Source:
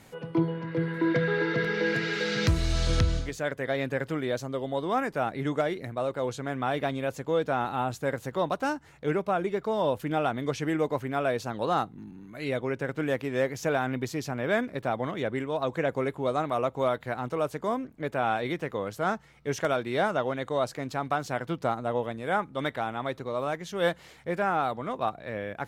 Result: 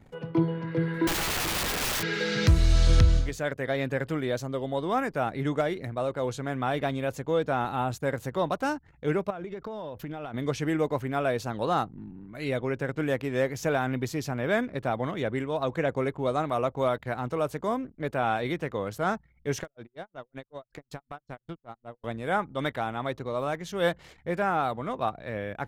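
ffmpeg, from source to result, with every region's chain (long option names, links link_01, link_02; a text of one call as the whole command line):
ffmpeg -i in.wav -filter_complex "[0:a]asettb=1/sr,asplit=3[link_01][link_02][link_03];[link_01]atrim=end=1.074[link_04];[link_02]atrim=start=1.07:end=2.03,asetpts=PTS-STARTPTS,afade=type=in:duration=0.004:curve=qsin,afade=type=out:start_time=0.956:duration=0.004:curve=qsin,bandreject=frequency=64.52:width_type=h:width=4,bandreject=frequency=129.04:width_type=h:width=4,bandreject=frequency=193.56:width_type=h:width=4,bandreject=frequency=258.08:width_type=h:width=4,bandreject=frequency=322.6:width_type=h:width=4,bandreject=frequency=387.12:width_type=h:width=4,bandreject=frequency=451.64:width_type=h:width=4,bandreject=frequency=516.16:width_type=h:width=4,bandreject=frequency=580.68:width_type=h:width=4,bandreject=frequency=645.2:width_type=h:width=4,bandreject=frequency=709.72:width_type=h:width=4,bandreject=frequency=774.24:width_type=h:width=4,bandreject=frequency=838.76:width_type=h:width=4,bandreject=frequency=903.28:width_type=h:width=4,bandreject=frequency=967.8:width_type=h:width=4,bandreject=frequency=1032.32:width_type=h:width=4,bandreject=frequency=1096.84:width_type=h:width=4,aeval=exprs='(mod(17.8*val(0)+1,2)-1)/17.8':channel_layout=same[link_05];[link_03]atrim=start=2.026[link_06];[link_04][link_05]acrossfade=duration=0.004:curve1=hsin:curve2=qsin[link_07];[link_07][link_06]acrossfade=duration=0.004:curve1=qsin:curve2=hsin,asettb=1/sr,asplit=3[link_08][link_09][link_10];[link_08]atrim=end=9.304[link_11];[link_09]atrim=start=9.3:end=10.34,asetpts=PTS-STARTPTS,afade=type=in:duration=0.004:curve=qsin,afade=type=out:start_time=1.036:duration=0.004:curve=qsin,equalizer=frequency=9000:width_type=o:width=0.45:gain=-10,acompressor=threshold=-33dB:ratio=12:attack=3.2:release=140:knee=1:detection=peak[link_12];[link_10]atrim=start=10.336[link_13];[link_11][link_12]acrossfade=duration=0.004:curve1=hsin:curve2=qsin[link_14];[link_14][link_13]acrossfade=duration=0.004:curve1=qsin:curve2=hsin,asettb=1/sr,asplit=3[link_15][link_16][link_17];[link_15]atrim=end=19.634[link_18];[link_16]atrim=start=19.63:end=22.04,asetpts=PTS-STARTPTS,afade=type=in:duration=0.004:curve=qsin,afade=type=out:start_time=2.406:duration=0.004:curve=qsin,acompressor=threshold=-33dB:ratio=12:attack=3.2:release=140:knee=1:detection=peak,aeval=exprs='val(0)*pow(10,-31*(0.5-0.5*cos(2*PI*5.3*n/s))/20)':channel_layout=same[link_19];[link_17]atrim=start=22.036[link_20];[link_18][link_19]acrossfade=duration=0.004:curve1=hsin:curve2=qsin[link_21];[link_21][link_20]acrossfade=duration=0.004:curve1=qsin:curve2=hsin,highshelf=frequency=11000:gain=3.5,anlmdn=0.00251,lowshelf=frequency=84:gain=9.5" out.wav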